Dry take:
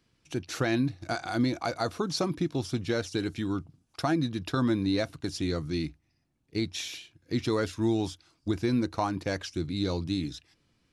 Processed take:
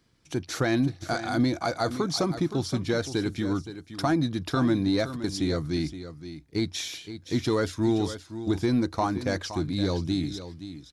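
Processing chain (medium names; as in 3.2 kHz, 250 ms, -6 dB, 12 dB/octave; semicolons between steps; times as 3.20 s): in parallel at -6 dB: saturation -24.5 dBFS, distortion -13 dB; on the sum: peaking EQ 2.7 kHz -7.5 dB 0.23 oct; delay 519 ms -12 dB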